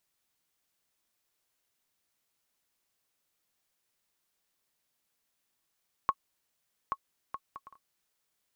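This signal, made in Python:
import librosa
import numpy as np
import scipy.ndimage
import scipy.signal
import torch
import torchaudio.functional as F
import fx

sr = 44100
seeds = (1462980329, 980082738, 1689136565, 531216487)

y = fx.bouncing_ball(sr, first_gap_s=0.83, ratio=0.51, hz=1100.0, decay_ms=53.0, level_db=-14.5)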